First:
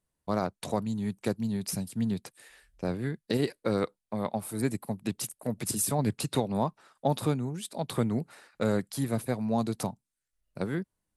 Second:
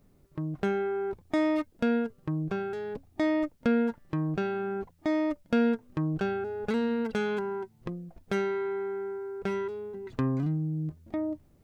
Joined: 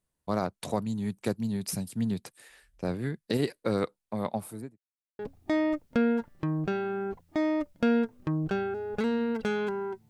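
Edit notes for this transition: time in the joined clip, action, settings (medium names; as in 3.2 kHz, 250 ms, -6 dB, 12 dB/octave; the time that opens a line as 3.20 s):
first
4.33–4.80 s: studio fade out
4.80–5.19 s: mute
5.19 s: go over to second from 2.89 s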